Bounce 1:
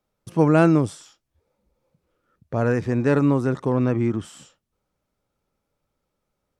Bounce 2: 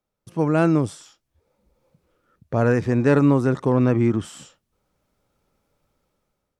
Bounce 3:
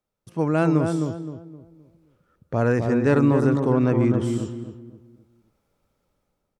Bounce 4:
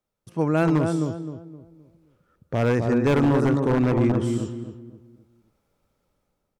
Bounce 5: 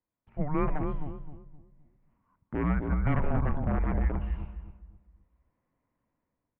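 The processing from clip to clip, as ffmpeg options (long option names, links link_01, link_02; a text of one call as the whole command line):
ffmpeg -i in.wav -af "dynaudnorm=framelen=280:gausssize=5:maxgain=12dB,volume=-5dB" out.wav
ffmpeg -i in.wav -filter_complex "[0:a]asplit=2[link_01][link_02];[link_02]adelay=260,lowpass=frequency=1000:poles=1,volume=-4dB,asplit=2[link_03][link_04];[link_04]adelay=260,lowpass=frequency=1000:poles=1,volume=0.37,asplit=2[link_05][link_06];[link_06]adelay=260,lowpass=frequency=1000:poles=1,volume=0.37,asplit=2[link_07][link_08];[link_08]adelay=260,lowpass=frequency=1000:poles=1,volume=0.37,asplit=2[link_09][link_10];[link_10]adelay=260,lowpass=frequency=1000:poles=1,volume=0.37[link_11];[link_01][link_03][link_05][link_07][link_09][link_11]amix=inputs=6:normalize=0,volume=-2dB" out.wav
ffmpeg -i in.wav -af "aeval=exprs='0.224*(abs(mod(val(0)/0.224+3,4)-2)-1)':channel_layout=same" out.wav
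ffmpeg -i in.wav -af "highpass=frequency=220:width_type=q:width=0.5412,highpass=frequency=220:width_type=q:width=1.307,lowpass=frequency=2600:width_type=q:width=0.5176,lowpass=frequency=2600:width_type=q:width=0.7071,lowpass=frequency=2600:width_type=q:width=1.932,afreqshift=-300,volume=-4.5dB" out.wav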